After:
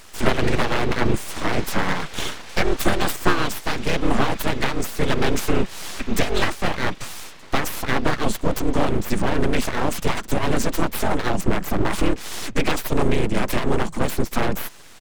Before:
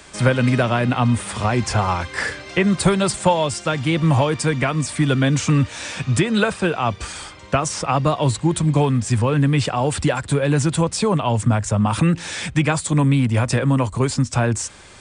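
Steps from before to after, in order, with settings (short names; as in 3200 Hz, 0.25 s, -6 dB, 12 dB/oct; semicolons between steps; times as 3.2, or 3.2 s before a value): harmoniser -4 st -4 dB; full-wave rectifier; gain -1 dB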